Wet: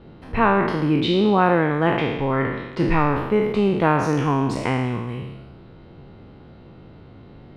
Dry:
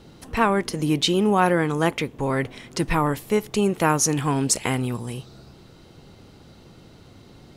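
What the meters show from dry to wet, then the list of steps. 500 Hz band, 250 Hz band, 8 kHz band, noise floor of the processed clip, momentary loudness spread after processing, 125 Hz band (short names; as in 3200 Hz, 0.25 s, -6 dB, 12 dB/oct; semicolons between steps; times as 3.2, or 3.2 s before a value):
+3.0 dB, +2.5 dB, -20.0 dB, -45 dBFS, 8 LU, +3.0 dB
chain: spectral trails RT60 1.07 s; air absorption 430 m; gain +2 dB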